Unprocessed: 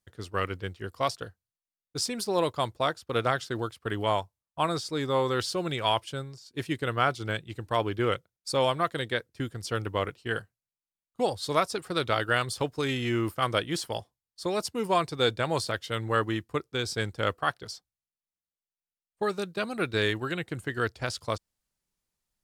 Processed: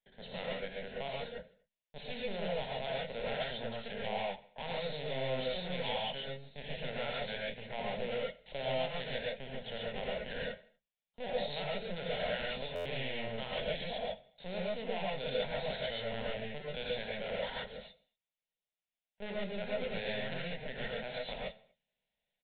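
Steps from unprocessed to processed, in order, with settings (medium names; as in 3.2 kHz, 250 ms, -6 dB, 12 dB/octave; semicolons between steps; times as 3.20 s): valve stage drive 39 dB, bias 0.7; bass shelf 160 Hz -10 dB; hum notches 50/100 Hz; feedback delay 79 ms, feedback 46%, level -20 dB; LPC vocoder at 8 kHz pitch kept; bass shelf 410 Hz -7 dB; static phaser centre 320 Hz, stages 6; gated-style reverb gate 160 ms rising, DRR -4 dB; buffer glitch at 12.75 s, samples 512, times 8; trim +7 dB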